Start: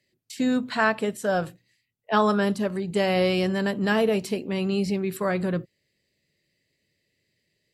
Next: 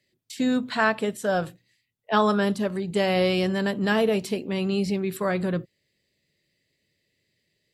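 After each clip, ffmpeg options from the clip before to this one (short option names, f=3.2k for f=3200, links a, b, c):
-af "equalizer=f=3.5k:w=5.8:g=4"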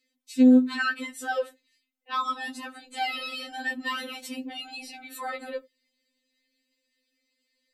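-af "afftfilt=real='re*3.46*eq(mod(b,12),0)':imag='im*3.46*eq(mod(b,12),0)':win_size=2048:overlap=0.75"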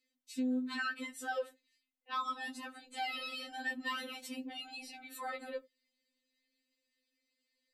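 -af "alimiter=limit=-20.5dB:level=0:latency=1:release=139,volume=-7dB"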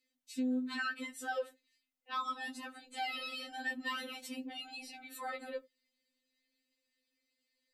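-af "bandreject=f=1.1k:w=14"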